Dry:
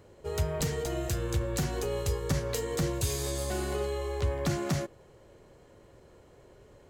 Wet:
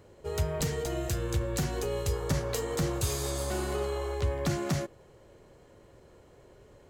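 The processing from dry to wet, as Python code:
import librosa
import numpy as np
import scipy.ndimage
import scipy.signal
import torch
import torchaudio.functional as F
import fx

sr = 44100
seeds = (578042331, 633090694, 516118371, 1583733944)

y = fx.dmg_noise_band(x, sr, seeds[0], low_hz=300.0, high_hz=1300.0, level_db=-46.0, at=(2.12, 4.13), fade=0.02)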